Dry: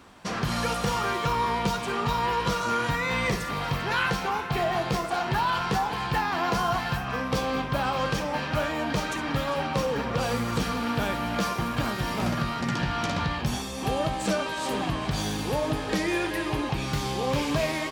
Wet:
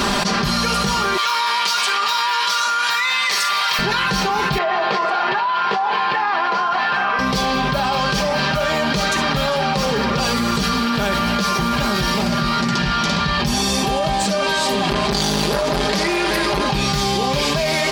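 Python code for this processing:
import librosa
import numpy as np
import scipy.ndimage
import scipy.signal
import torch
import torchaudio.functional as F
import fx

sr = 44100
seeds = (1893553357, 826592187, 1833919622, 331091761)

y = fx.highpass(x, sr, hz=1100.0, slope=12, at=(1.17, 3.79))
y = fx.bandpass_edges(y, sr, low_hz=520.0, high_hz=2300.0, at=(4.58, 7.19))
y = fx.transformer_sat(y, sr, knee_hz=1100.0, at=(14.89, 16.66))
y = fx.peak_eq(y, sr, hz=4600.0, db=7.5, octaves=0.88)
y = y + 0.71 * np.pad(y, (int(5.0 * sr / 1000.0), 0))[:len(y)]
y = fx.env_flatten(y, sr, amount_pct=100)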